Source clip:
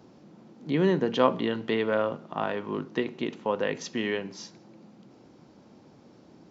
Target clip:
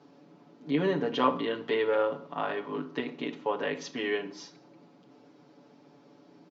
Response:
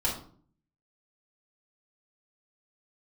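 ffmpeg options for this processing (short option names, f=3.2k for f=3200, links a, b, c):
-filter_complex "[0:a]highpass=210,lowpass=5.3k,aecho=1:1:7:0.97,asplit=2[a][b];[1:a]atrim=start_sample=2205,adelay=28[c];[b][c]afir=irnorm=-1:irlink=0,volume=-20dB[d];[a][d]amix=inputs=2:normalize=0,volume=-4dB"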